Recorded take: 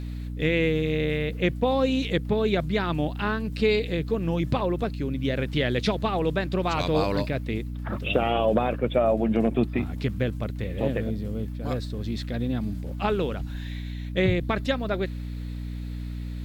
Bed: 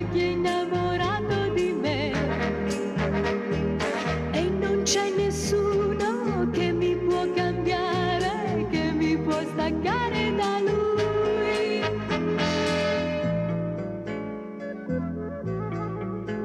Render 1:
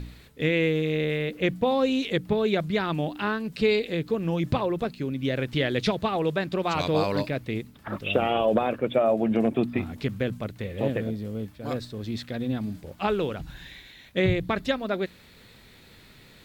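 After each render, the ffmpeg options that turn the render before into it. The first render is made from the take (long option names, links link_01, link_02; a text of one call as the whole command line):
ffmpeg -i in.wav -af "bandreject=frequency=60:width_type=h:width=4,bandreject=frequency=120:width_type=h:width=4,bandreject=frequency=180:width_type=h:width=4,bandreject=frequency=240:width_type=h:width=4,bandreject=frequency=300:width_type=h:width=4" out.wav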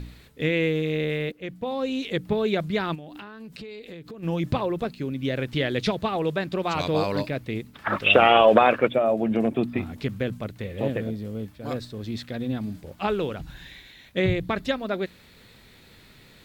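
ffmpeg -i in.wav -filter_complex "[0:a]asplit=3[link_01][link_02][link_03];[link_01]afade=type=out:start_time=2.94:duration=0.02[link_04];[link_02]acompressor=threshold=-36dB:ratio=12:attack=3.2:release=140:knee=1:detection=peak,afade=type=in:start_time=2.94:duration=0.02,afade=type=out:start_time=4.22:duration=0.02[link_05];[link_03]afade=type=in:start_time=4.22:duration=0.02[link_06];[link_04][link_05][link_06]amix=inputs=3:normalize=0,asplit=3[link_07][link_08][link_09];[link_07]afade=type=out:start_time=7.73:duration=0.02[link_10];[link_08]equalizer=frequency=1700:width=0.35:gain=13,afade=type=in:start_time=7.73:duration=0.02,afade=type=out:start_time=8.87:duration=0.02[link_11];[link_09]afade=type=in:start_time=8.87:duration=0.02[link_12];[link_10][link_11][link_12]amix=inputs=3:normalize=0,asplit=2[link_13][link_14];[link_13]atrim=end=1.32,asetpts=PTS-STARTPTS,afade=type=out:start_time=1.316:duration=0.004:curve=hsin:silence=0.188365[link_15];[link_14]atrim=start=1.32,asetpts=PTS-STARTPTS,afade=type=in:duration=0.99:silence=0.188365[link_16];[link_15][link_16]concat=n=2:v=0:a=1" out.wav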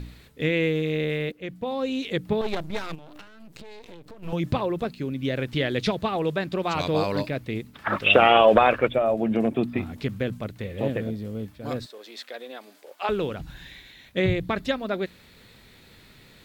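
ffmpeg -i in.wav -filter_complex "[0:a]asettb=1/sr,asplit=3[link_01][link_02][link_03];[link_01]atrim=end=2.414[link_04];[link_02]atrim=start=2.41:end=4.33,asetpts=PTS-STARTPTS,afade=type=in:duration=0.004:curve=qsin,afade=type=out:start_time=1.916:duration=0.004:curve=qsin,aeval=exprs='max(val(0),0)':channel_layout=same[link_05];[link_03]atrim=start=4.326[link_06];[link_04][link_05]acrossfade=duration=0.004:curve1=hsin:curve2=qsin[link_07];[link_07][link_06]acrossfade=duration=0.004:curve1=qsin:curve2=hsin,asplit=3[link_08][link_09][link_10];[link_08]afade=type=out:start_time=8.54:duration=0.02[link_11];[link_09]asubboost=boost=4.5:cutoff=82,afade=type=in:start_time=8.54:duration=0.02,afade=type=out:start_time=9.17:duration=0.02[link_12];[link_10]afade=type=in:start_time=9.17:duration=0.02[link_13];[link_11][link_12][link_13]amix=inputs=3:normalize=0,asettb=1/sr,asplit=3[link_14][link_15][link_16];[link_14]atrim=end=11.864[link_17];[link_15]atrim=start=11.86:end=13.09,asetpts=PTS-STARTPTS,afade=type=in:duration=0.004:curve=qsin,afade=type=out:start_time=1.226:duration=0.004:curve=qsin,highpass=frequency=450:width=0.5412,highpass=frequency=450:width=1.3066[link_18];[link_16]atrim=start=13.086[link_19];[link_17][link_18]acrossfade=duration=0.004:curve1=hsin:curve2=qsin[link_20];[link_20][link_19]acrossfade=duration=0.004:curve1=qsin:curve2=hsin" out.wav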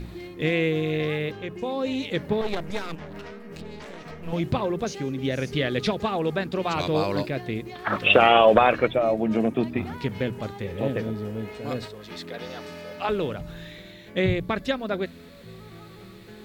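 ffmpeg -i in.wav -i bed.wav -filter_complex "[1:a]volume=-15dB[link_01];[0:a][link_01]amix=inputs=2:normalize=0" out.wav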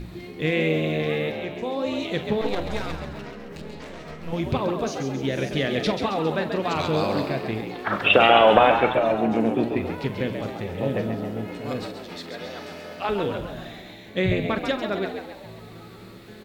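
ffmpeg -i in.wav -filter_complex "[0:a]asplit=2[link_01][link_02];[link_02]adelay=44,volume=-12dB[link_03];[link_01][link_03]amix=inputs=2:normalize=0,asplit=7[link_04][link_05][link_06][link_07][link_08][link_09][link_10];[link_05]adelay=135,afreqshift=69,volume=-7dB[link_11];[link_06]adelay=270,afreqshift=138,volume=-12.8dB[link_12];[link_07]adelay=405,afreqshift=207,volume=-18.7dB[link_13];[link_08]adelay=540,afreqshift=276,volume=-24.5dB[link_14];[link_09]adelay=675,afreqshift=345,volume=-30.4dB[link_15];[link_10]adelay=810,afreqshift=414,volume=-36.2dB[link_16];[link_04][link_11][link_12][link_13][link_14][link_15][link_16]amix=inputs=7:normalize=0" out.wav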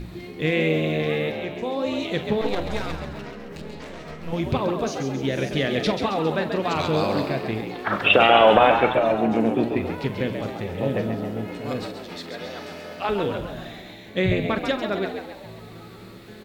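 ffmpeg -i in.wav -af "volume=1dB,alimiter=limit=-3dB:level=0:latency=1" out.wav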